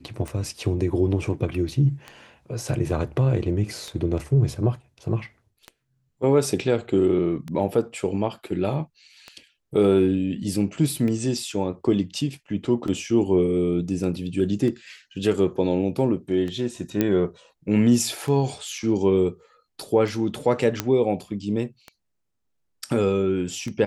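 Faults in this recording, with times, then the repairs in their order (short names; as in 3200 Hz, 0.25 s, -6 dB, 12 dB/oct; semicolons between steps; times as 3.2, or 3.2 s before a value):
tick 33 1/3 rpm
17.01 pop -8 dBFS
20.8 pop -7 dBFS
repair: de-click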